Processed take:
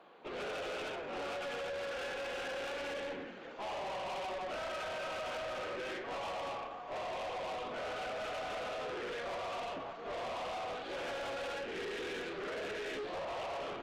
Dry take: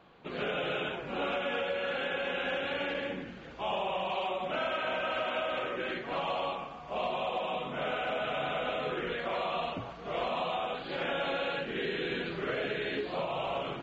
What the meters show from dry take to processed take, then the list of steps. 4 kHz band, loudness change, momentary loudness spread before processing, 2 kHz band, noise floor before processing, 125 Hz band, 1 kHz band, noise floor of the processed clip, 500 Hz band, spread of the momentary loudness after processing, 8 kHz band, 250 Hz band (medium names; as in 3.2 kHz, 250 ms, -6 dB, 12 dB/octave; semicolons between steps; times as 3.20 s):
-7.0 dB, -6.5 dB, 4 LU, -6.5 dB, -45 dBFS, -10.5 dB, -6.0 dB, -46 dBFS, -5.5 dB, 2 LU, no reading, -8.5 dB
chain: high-pass 420 Hz 12 dB/octave; tilt shelf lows +4 dB; peak limiter -26 dBFS, peak gain reduction 3.5 dB; valve stage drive 40 dB, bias 0.4; trim +2.5 dB